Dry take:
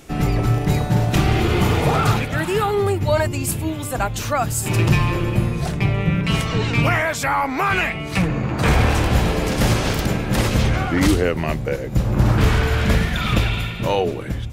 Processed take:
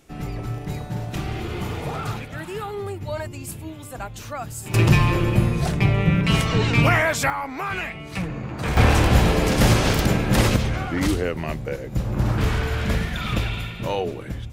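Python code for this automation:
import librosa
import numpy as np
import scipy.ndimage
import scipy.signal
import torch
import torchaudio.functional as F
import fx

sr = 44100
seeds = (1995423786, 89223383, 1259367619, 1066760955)

y = fx.gain(x, sr, db=fx.steps((0.0, -11.0), (4.74, 0.5), (7.3, -8.5), (8.77, 1.0), (10.56, -5.5)))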